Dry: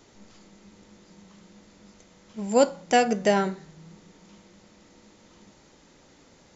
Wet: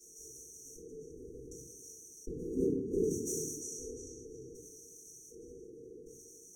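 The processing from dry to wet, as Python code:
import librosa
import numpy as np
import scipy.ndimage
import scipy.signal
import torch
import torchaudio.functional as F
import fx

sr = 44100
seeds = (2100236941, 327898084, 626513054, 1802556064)

p1 = fx.wiener(x, sr, points=15)
p2 = fx.spec_gate(p1, sr, threshold_db=-20, keep='weak')
p3 = fx.low_shelf(p2, sr, hz=100.0, db=10.5)
p4 = fx.sample_hold(p3, sr, seeds[0], rate_hz=2500.0, jitter_pct=0)
p5 = fx.spec_paint(p4, sr, seeds[1], shape='rise', start_s=1.01, length_s=1.67, low_hz=1100.0, high_hz=2200.0, level_db=-34.0)
p6 = fx.filter_lfo_bandpass(p5, sr, shape='square', hz=0.66, low_hz=640.0, high_hz=3800.0, q=6.6)
p7 = fx.brickwall_bandstop(p6, sr, low_hz=480.0, high_hz=5600.0)
p8 = p7 + fx.echo_banded(p7, sr, ms=348, feedback_pct=41, hz=2400.0, wet_db=-5.0, dry=0)
p9 = fx.room_shoebox(p8, sr, seeds[2], volume_m3=47.0, walls='mixed', distance_m=2.8)
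p10 = fx.env_flatten(p9, sr, amount_pct=50)
y = p10 * librosa.db_to_amplitude(13.5)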